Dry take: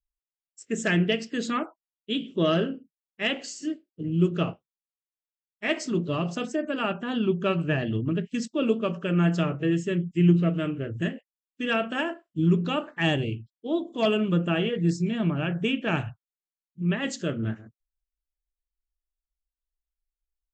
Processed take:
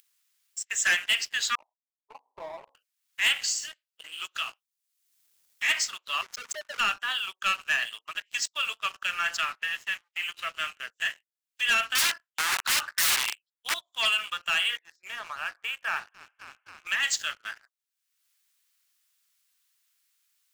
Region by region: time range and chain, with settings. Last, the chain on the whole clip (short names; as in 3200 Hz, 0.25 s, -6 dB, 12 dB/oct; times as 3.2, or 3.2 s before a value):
1.55–2.75 median filter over 41 samples + steep low-pass 1000 Hz 96 dB/oct
4.25–5.69 compressor 2:1, threshold -32 dBFS + high shelf 3300 Hz +8.5 dB
6.21–6.8 formant sharpening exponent 3 + comb 4.8 ms, depth 99% + backlash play -32 dBFS
9.37–10.24 G.711 law mismatch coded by A + LPF 2600 Hz + tilt +2 dB/oct
11.95–13.74 HPF 190 Hz + bell 1600 Hz +6.5 dB 0.74 oct + wrapped overs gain 24.5 dB
14.79–16.87 LPF 1400 Hz + frequency-shifting echo 0.27 s, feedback 64%, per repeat -33 Hz, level -22 dB
whole clip: Bessel high-pass 1700 Hz, order 6; upward compressor, threshold -42 dBFS; sample leveller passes 3